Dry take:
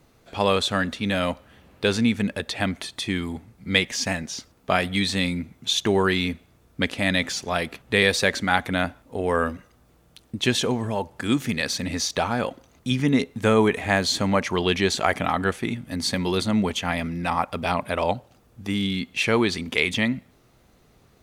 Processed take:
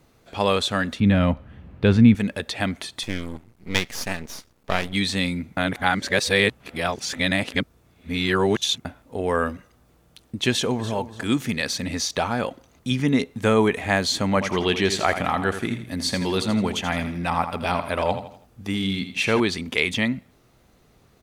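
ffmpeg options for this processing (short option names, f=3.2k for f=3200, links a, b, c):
-filter_complex "[0:a]asettb=1/sr,asplit=3[a][b][c];[a]atrim=end=1.004[d];[b]atrim=start=1:end=2.15,asetpts=PTS-STARTPTS,afade=t=in:d=0.004:c=qsin,afade=t=out:st=1.146:d=0.004:c=qsin,bass=f=250:g=13,treble=f=4k:g=-15[e];[c]atrim=start=2.146[f];[d][e]acrossfade=d=0.004:c1=hsin:c2=qsin[g];[g][f]acrossfade=d=0.004:c1=qsin:c2=hsin,asettb=1/sr,asplit=3[h][i][j];[h]atrim=end=3.034[k];[i]atrim=start=3.03:end=4.93,asetpts=PTS-STARTPTS,afade=t=in:d=0.004:c=qsin,afade=t=out:st=1.896:d=0.004:c=qsin,aeval=exprs='max(val(0),0)':c=same[l];[j]atrim=start=4.926[m];[k][l]acrossfade=d=0.004:c1=hsin:c2=qsin[n];[n][m]acrossfade=d=0.004:c1=qsin:c2=hsin,asplit=2[o][p];[p]afade=t=in:st=10.5:d=0.01,afade=t=out:st=10.94:d=0.01,aecho=0:1:290|580|870:0.199526|0.0498816|0.0124704[q];[o][q]amix=inputs=2:normalize=0,asettb=1/sr,asplit=3[r][s][t];[r]atrim=end=14.294[u];[s]atrim=start=14.29:end=19.4,asetpts=PTS-STARTPTS,afade=t=in:d=0.004:c=qsin,afade=t=out:st=5.106:d=0.004:c=qsin,aecho=1:1:82|164|246|328:0.316|0.126|0.0506|0.0202,atrim=end_sample=225351[v];[t]atrim=start=19.396[w];[u][v]acrossfade=d=0.004:c1=hsin:c2=qsin[x];[x][w]acrossfade=d=0.004:c1=qsin:c2=hsin,asplit=3[y][z][aa];[y]atrim=end=5.572[ab];[z]atrim=start=5.568:end=8.852,asetpts=PTS-STARTPTS,areverse[ac];[aa]atrim=start=8.848[ad];[ab][ac]acrossfade=d=0.004:c1=hsin:c2=hsin[ae];[ae][ad]acrossfade=d=0.004:c1=hsin:c2=hsin"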